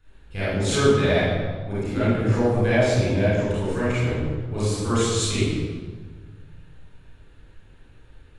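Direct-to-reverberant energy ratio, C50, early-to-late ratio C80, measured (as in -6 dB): -12.0 dB, -5.5 dB, -1.0 dB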